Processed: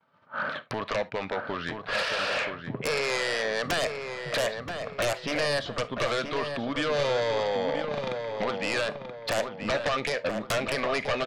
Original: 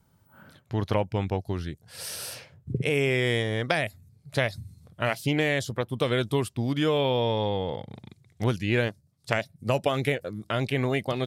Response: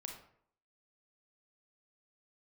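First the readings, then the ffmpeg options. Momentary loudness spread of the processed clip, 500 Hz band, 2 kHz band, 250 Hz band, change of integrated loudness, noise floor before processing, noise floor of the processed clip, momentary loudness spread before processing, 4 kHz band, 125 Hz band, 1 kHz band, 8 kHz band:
6 LU, 0.0 dB, +1.5 dB, -6.0 dB, -1.5 dB, -64 dBFS, -46 dBFS, 12 LU, +2.0 dB, -11.5 dB, +2.0 dB, +2.0 dB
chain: -filter_complex "[0:a]agate=range=0.0224:threshold=0.00251:ratio=3:detection=peak,acompressor=threshold=0.01:ratio=8,highpass=310,equalizer=f=350:t=q:w=4:g=-7,equalizer=f=600:t=q:w=4:g=7,equalizer=f=1200:t=q:w=4:g=10,equalizer=f=1700:t=q:w=4:g=5,equalizer=f=2500:t=q:w=4:g=4,lowpass=f=3800:w=0.5412,lowpass=f=3800:w=1.3066,aeval=exprs='0.0794*sin(PI/2*6.31*val(0)/0.0794)':c=same,asplit=2[s0][s1];[s1]adelay=978,lowpass=f=2400:p=1,volume=0.501,asplit=2[s2][s3];[s3]adelay=978,lowpass=f=2400:p=1,volume=0.4,asplit=2[s4][s5];[s5]adelay=978,lowpass=f=2400:p=1,volume=0.4,asplit=2[s6][s7];[s7]adelay=978,lowpass=f=2400:p=1,volume=0.4,asplit=2[s8][s9];[s9]adelay=978,lowpass=f=2400:p=1,volume=0.4[s10];[s0][s2][s4][s6][s8][s10]amix=inputs=6:normalize=0,asplit=2[s11][s12];[1:a]atrim=start_sample=2205,atrim=end_sample=3528[s13];[s12][s13]afir=irnorm=-1:irlink=0,volume=0.501[s14];[s11][s14]amix=inputs=2:normalize=0,volume=0.708"

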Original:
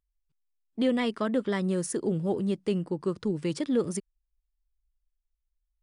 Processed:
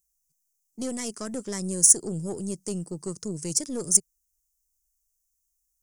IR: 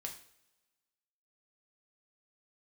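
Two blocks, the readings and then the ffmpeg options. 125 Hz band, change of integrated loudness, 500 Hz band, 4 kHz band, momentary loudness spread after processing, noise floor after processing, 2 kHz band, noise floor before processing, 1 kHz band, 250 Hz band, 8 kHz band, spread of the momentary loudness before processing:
-2.5 dB, +5.0 dB, -6.0 dB, +3.0 dB, 17 LU, -77 dBFS, no reading, -82 dBFS, -7.5 dB, -5.0 dB, +20.5 dB, 4 LU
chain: -af "aeval=exprs='(tanh(11.2*val(0)+0.5)-tanh(0.5))/11.2':c=same,equalizer=f=160:t=o:w=0.67:g=7,equalizer=f=400:t=o:w=0.67:g=3,equalizer=f=6300:t=o:w=0.67:g=9,aexciter=amount=15:drive=6.5:freq=5500,volume=0.501"

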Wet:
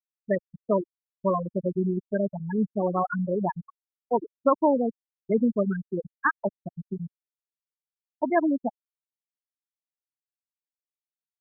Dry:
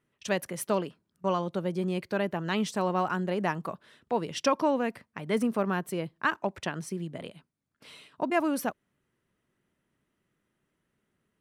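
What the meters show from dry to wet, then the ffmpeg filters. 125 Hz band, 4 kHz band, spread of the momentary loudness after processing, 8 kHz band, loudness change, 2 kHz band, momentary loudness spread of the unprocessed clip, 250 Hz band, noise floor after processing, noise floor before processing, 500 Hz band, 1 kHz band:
+2.5 dB, under -40 dB, 12 LU, under -35 dB, +3.0 dB, -0.5 dB, 11 LU, +4.0 dB, under -85 dBFS, -80 dBFS, +3.5 dB, +1.5 dB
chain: -af "afftfilt=real='re*gte(hypot(re,im),0.2)':imag='im*gte(hypot(re,im),0.2)':win_size=1024:overlap=0.75,anlmdn=0.0251,volume=1.78"

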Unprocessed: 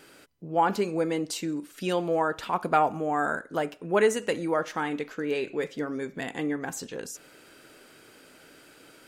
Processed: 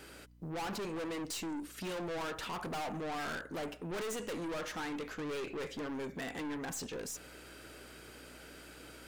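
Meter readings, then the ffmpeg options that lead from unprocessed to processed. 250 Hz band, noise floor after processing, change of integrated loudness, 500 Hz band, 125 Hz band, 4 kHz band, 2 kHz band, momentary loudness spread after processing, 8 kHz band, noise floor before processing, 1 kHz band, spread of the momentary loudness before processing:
-9.0 dB, -53 dBFS, -11.0 dB, -13.0 dB, -8.0 dB, -4.5 dB, -9.0 dB, 13 LU, -4.5 dB, -54 dBFS, -14.0 dB, 10 LU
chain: -af "aeval=exprs='val(0)+0.001*(sin(2*PI*60*n/s)+sin(2*PI*2*60*n/s)/2+sin(2*PI*3*60*n/s)/3+sin(2*PI*4*60*n/s)/4+sin(2*PI*5*60*n/s)/5)':c=same,acrusher=bits=9:mode=log:mix=0:aa=0.000001,aeval=exprs='(tanh(79.4*val(0)+0.2)-tanh(0.2))/79.4':c=same,volume=1.12"

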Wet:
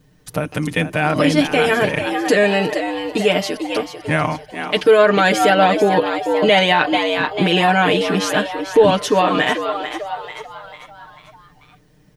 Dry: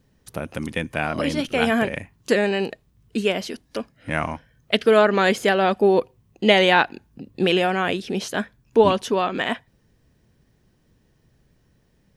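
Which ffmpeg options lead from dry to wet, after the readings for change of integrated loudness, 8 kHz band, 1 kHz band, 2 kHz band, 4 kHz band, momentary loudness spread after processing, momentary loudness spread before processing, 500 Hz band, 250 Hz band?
+4.5 dB, +8.0 dB, +6.5 dB, +5.5 dB, +5.5 dB, 12 LU, 15 LU, +4.5 dB, +5.0 dB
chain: -filter_complex "[0:a]asplit=6[s0][s1][s2][s3][s4][s5];[s1]adelay=443,afreqshift=100,volume=0.299[s6];[s2]adelay=886,afreqshift=200,volume=0.146[s7];[s3]adelay=1329,afreqshift=300,volume=0.0716[s8];[s4]adelay=1772,afreqshift=400,volume=0.0351[s9];[s5]adelay=2215,afreqshift=500,volume=0.0172[s10];[s0][s6][s7][s8][s9][s10]amix=inputs=6:normalize=0,alimiter=limit=0.251:level=0:latency=1:release=30,aecho=1:1:6.6:0.85,volume=1.88"

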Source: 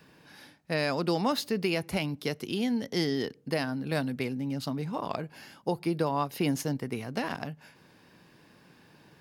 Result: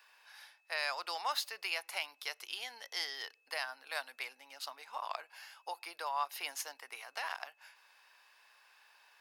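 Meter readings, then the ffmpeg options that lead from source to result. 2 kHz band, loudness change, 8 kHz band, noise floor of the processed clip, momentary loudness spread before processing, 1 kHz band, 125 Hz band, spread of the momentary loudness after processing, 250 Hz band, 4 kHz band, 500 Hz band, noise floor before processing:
-2.5 dB, -8.5 dB, -2.5 dB, -72 dBFS, 7 LU, -4.5 dB, under -40 dB, 13 LU, -38.0 dB, -2.5 dB, -17.0 dB, -59 dBFS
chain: -af "highpass=f=820:w=0.5412,highpass=f=820:w=1.3066,aeval=exprs='val(0)+0.000355*sin(2*PI*2600*n/s)':c=same,volume=0.75"

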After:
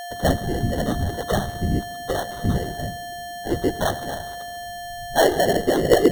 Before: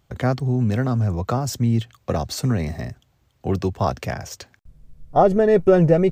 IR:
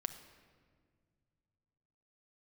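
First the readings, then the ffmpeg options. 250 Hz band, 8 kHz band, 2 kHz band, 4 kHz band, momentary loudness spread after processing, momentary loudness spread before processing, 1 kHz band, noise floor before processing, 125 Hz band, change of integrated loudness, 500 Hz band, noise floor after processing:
-2.5 dB, +3.0 dB, +5.5 dB, +6.5 dB, 15 LU, 16 LU, 0.0 dB, -64 dBFS, -6.0 dB, -3.0 dB, -1.5 dB, -34 dBFS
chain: -filter_complex "[0:a]equalizer=f=630:t=o:w=2.3:g=12,asplit=2[s0][s1];[1:a]atrim=start_sample=2205,asetrate=40572,aresample=44100,adelay=8[s2];[s1][s2]afir=irnorm=-1:irlink=0,volume=0.794[s3];[s0][s3]amix=inputs=2:normalize=0,flanger=delay=2.5:depth=8.1:regen=7:speed=0.94:shape=sinusoidal,afftfilt=real='hypot(re,im)*cos(2*PI*random(0))':imag='hypot(re,im)*sin(2*PI*random(1))':win_size=512:overlap=0.75,aeval=exprs='val(0)+0.0447*sin(2*PI*5600*n/s)':c=same,lowshelf=f=160:g=5.5,deesser=0.6,acrossover=split=520[s4][s5];[s5]acrusher=samples=18:mix=1:aa=0.000001[s6];[s4][s6]amix=inputs=2:normalize=0,volume=0.668"

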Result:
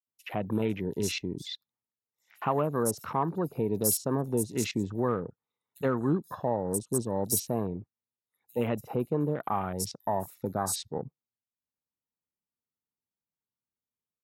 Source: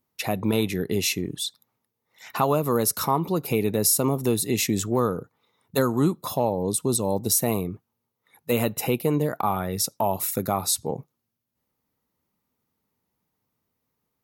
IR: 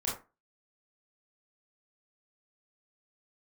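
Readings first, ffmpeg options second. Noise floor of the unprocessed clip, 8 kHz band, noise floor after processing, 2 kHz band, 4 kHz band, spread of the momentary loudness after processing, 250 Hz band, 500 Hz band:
-80 dBFS, -7.5 dB, under -85 dBFS, -8.0 dB, -9.5 dB, 9 LU, -5.5 dB, -5.5 dB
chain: -filter_complex "[0:a]afwtdn=0.0224,acrossover=split=5300[s0][s1];[s0]adelay=70[s2];[s2][s1]amix=inputs=2:normalize=0,volume=0.531"

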